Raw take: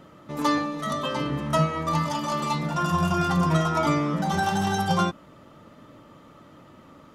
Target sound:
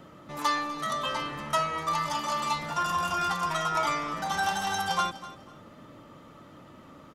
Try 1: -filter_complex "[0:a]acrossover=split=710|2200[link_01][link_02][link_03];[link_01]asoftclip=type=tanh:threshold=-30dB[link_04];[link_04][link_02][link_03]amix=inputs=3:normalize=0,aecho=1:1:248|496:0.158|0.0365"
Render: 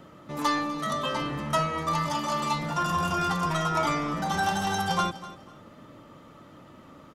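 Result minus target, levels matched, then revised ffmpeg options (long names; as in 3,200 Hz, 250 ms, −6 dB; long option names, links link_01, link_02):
soft clipping: distortion −4 dB
-filter_complex "[0:a]acrossover=split=710|2200[link_01][link_02][link_03];[link_01]asoftclip=type=tanh:threshold=-40.5dB[link_04];[link_04][link_02][link_03]amix=inputs=3:normalize=0,aecho=1:1:248|496:0.158|0.0365"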